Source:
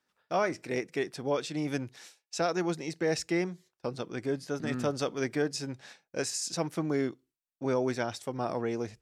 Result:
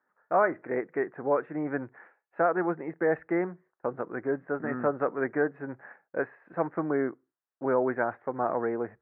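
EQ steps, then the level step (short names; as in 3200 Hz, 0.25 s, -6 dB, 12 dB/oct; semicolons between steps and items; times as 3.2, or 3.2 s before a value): HPF 520 Hz 6 dB/oct; steep low-pass 1800 Hz 48 dB/oct; +7.0 dB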